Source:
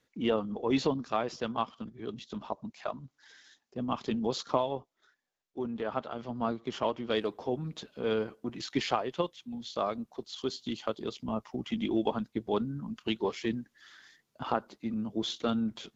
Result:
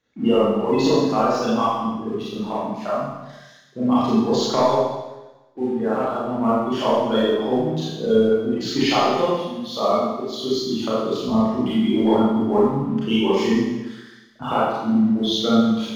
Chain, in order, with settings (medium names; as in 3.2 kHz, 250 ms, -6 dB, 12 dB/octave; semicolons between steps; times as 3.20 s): spectral gate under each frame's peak -20 dB strong; waveshaping leveller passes 1; Schroeder reverb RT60 1.1 s, combs from 28 ms, DRR -9.5 dB